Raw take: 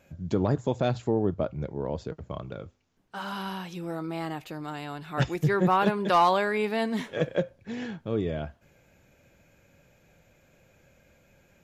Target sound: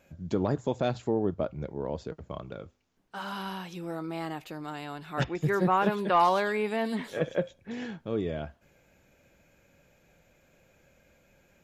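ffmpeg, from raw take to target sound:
ffmpeg -i in.wav -filter_complex "[0:a]equalizer=frequency=110:width=1.5:gain=-4.5,asettb=1/sr,asplit=3[link_01][link_02][link_03];[link_01]atrim=end=5.244[link_04];[link_02]atrim=start=5.24:end=7.71,asetpts=PTS-STARTPTS,afade=type=in:duration=0.004:curve=qsin,afade=type=out:start_time=2.466:duration=0.004:curve=qsin,acrossover=split=3600[link_05][link_06];[link_06]adelay=110[link_07];[link_05][link_07]amix=inputs=2:normalize=0,atrim=end_sample=108927[link_08];[link_03]atrim=start=7.706[link_09];[link_04][link_08]acrossfade=duration=0.004:curve1=hsin:curve2=qsin[link_10];[link_10][link_09]acrossfade=duration=0.004:curve1=qsin:curve2=hsin,volume=-1.5dB" out.wav

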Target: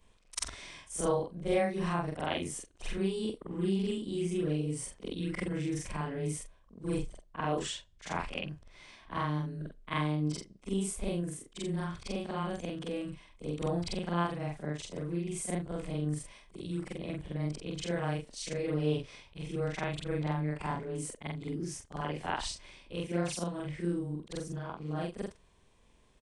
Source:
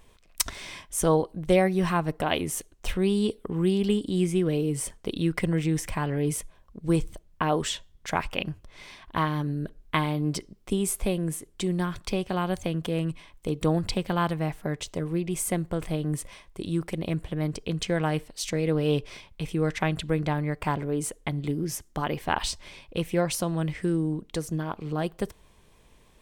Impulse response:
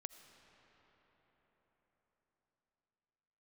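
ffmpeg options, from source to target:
-af "afftfilt=real='re':imag='-im':win_size=4096:overlap=0.75,aresample=22050,aresample=44100,volume=-3dB"

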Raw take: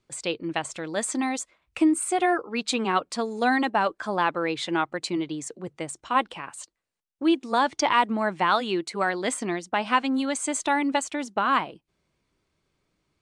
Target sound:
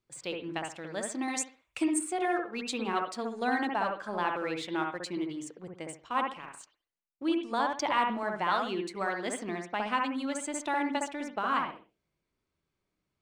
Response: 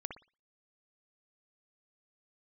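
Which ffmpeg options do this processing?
-filter_complex "[0:a]asettb=1/sr,asplit=3[link_01][link_02][link_03];[link_01]atrim=end=1.284[link_04];[link_02]atrim=start=1.28:end=1.99,asetpts=PTS-STARTPTS,afade=type=in:duration=0.004:curve=qsin,afade=type=out:start_time=0.706:duration=0.004:curve=qsin,highshelf=frequency=2800:gain=10.5[link_05];[link_03]atrim=start=1.986[link_06];[link_04][link_05]acrossfade=duration=0.004:curve1=hsin:curve2=qsin[link_07];[link_07][link_06]acrossfade=duration=0.004:curve1=qsin:curve2=hsin,asplit=2[link_08][link_09];[link_09]aeval=exprs='sgn(val(0))*max(abs(val(0))-0.0112,0)':channel_layout=same,volume=-8dB[link_10];[link_08][link_10]amix=inputs=2:normalize=0[link_11];[1:a]atrim=start_sample=2205,afade=type=out:start_time=0.32:duration=0.01,atrim=end_sample=14553,asetrate=40572,aresample=44100[link_12];[link_11][link_12]afir=irnorm=-1:irlink=0,volume=-8dB"

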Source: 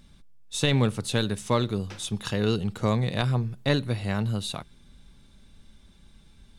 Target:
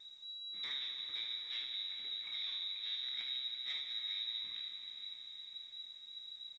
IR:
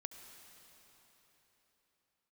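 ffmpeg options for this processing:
-filter_complex "[0:a]aeval=exprs='if(lt(val(0),0),0.251*val(0),val(0))':channel_layout=same,firequalizer=gain_entry='entry(160,0);entry(280,-3);entry(480,-9);entry(1000,-29);entry(1700,-7);entry(2700,-22)':delay=0.05:min_phase=1,acrossover=split=600|2300[link_01][link_02][link_03];[link_01]acompressor=threshold=-40dB:ratio=16[link_04];[link_04][link_02][link_03]amix=inputs=3:normalize=0,lowpass=frequency=3300:width_type=q:width=0.5098,lowpass=frequency=3300:width_type=q:width=0.6013,lowpass=frequency=3300:width_type=q:width=0.9,lowpass=frequency=3300:width_type=q:width=2.563,afreqshift=-3900,asoftclip=type=tanh:threshold=-38dB,aecho=1:1:30|42|74:0.266|0.266|0.447[link_05];[1:a]atrim=start_sample=2205,asetrate=29106,aresample=44100[link_06];[link_05][link_06]afir=irnorm=-1:irlink=0,volume=4dB" -ar 16000 -c:a pcm_alaw

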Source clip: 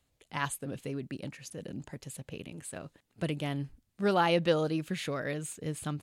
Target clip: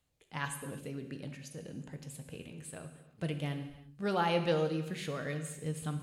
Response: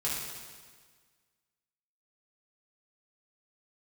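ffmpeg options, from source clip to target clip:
-filter_complex "[0:a]asplit=2[link_01][link_02];[1:a]atrim=start_sample=2205,afade=type=out:start_time=0.44:duration=0.01,atrim=end_sample=19845,asetrate=48510,aresample=44100[link_03];[link_02][link_03]afir=irnorm=-1:irlink=0,volume=-8dB[link_04];[link_01][link_04]amix=inputs=2:normalize=0,volume=-7dB"

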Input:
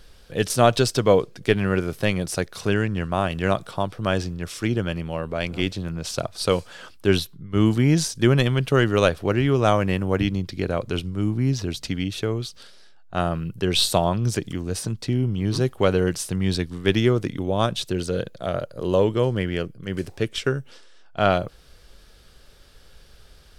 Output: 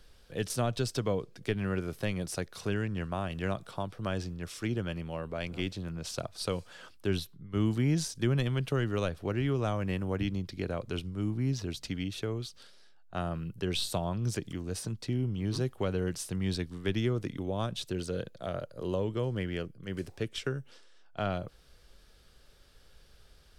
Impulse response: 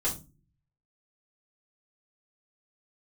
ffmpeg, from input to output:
-filter_complex "[0:a]acrossover=split=240[link_01][link_02];[link_02]acompressor=threshold=-23dB:ratio=3[link_03];[link_01][link_03]amix=inputs=2:normalize=0,volume=-8.5dB"

